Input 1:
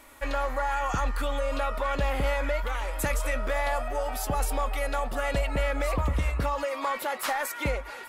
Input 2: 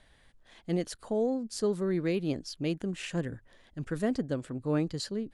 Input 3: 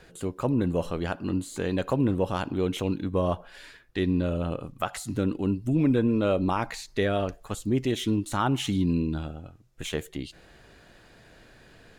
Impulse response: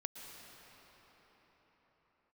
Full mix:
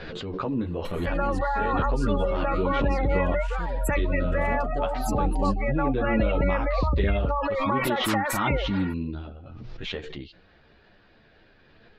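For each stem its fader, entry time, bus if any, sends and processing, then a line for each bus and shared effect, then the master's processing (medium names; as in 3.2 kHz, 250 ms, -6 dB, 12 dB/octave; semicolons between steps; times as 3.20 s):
+2.0 dB, 0.85 s, no send, spectral gate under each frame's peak -20 dB strong
-7.5 dB, 0.45 s, no send, none
-1.0 dB, 0.00 s, no send, steep low-pass 4.9 kHz 36 dB/octave; three-phase chorus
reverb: none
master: treble shelf 9.5 kHz -9.5 dB; swell ahead of each attack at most 25 dB/s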